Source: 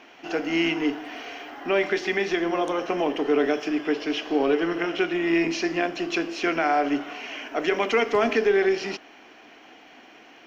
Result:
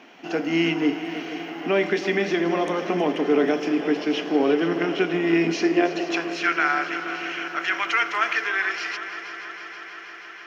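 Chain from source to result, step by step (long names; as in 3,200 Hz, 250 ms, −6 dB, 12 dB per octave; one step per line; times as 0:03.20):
high-pass filter sweep 170 Hz → 1,400 Hz, 0:05.55–0:06.38
on a send: echo machine with several playback heads 160 ms, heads second and third, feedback 74%, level −14 dB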